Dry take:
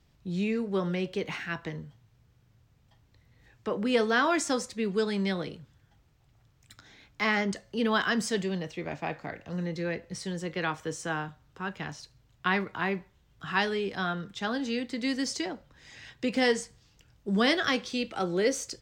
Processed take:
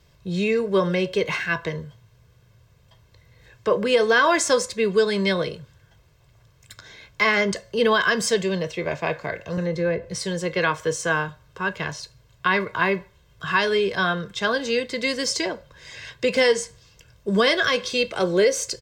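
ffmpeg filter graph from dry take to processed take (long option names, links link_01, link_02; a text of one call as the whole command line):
ffmpeg -i in.wav -filter_complex "[0:a]asettb=1/sr,asplit=3[link_01][link_02][link_03];[link_01]atrim=end=9.574[link_04];[link_02]atrim=start=9.57:end=10.1,asetpts=PTS-STARTPTS,afade=type=in:duration=0.004:curve=qsin,afade=type=out:start_time=0.526:duration=0.004:curve=qsin,lowshelf=frequency=320:gain=10.5,acrossover=split=100|430|1700[link_05][link_06][link_07][link_08];[link_05]acompressor=threshold=-53dB:ratio=3[link_09];[link_06]acompressor=threshold=-36dB:ratio=3[link_10];[link_07]acompressor=threshold=-34dB:ratio=3[link_11];[link_08]acompressor=threshold=-53dB:ratio=3[link_12];[link_09][link_10][link_11][link_12]amix=inputs=4:normalize=0[link_13];[link_03]atrim=start=10.096[link_14];[link_04][link_13]acrossfade=duration=0.004:curve1=hsin:curve2=qsin[link_15];[link_15][link_14]acrossfade=duration=0.004:curve1=qsin:curve2=hsin,lowshelf=frequency=91:gain=-7.5,aecho=1:1:1.9:0.65,alimiter=limit=-17.5dB:level=0:latency=1:release=178,volume=8.5dB" out.wav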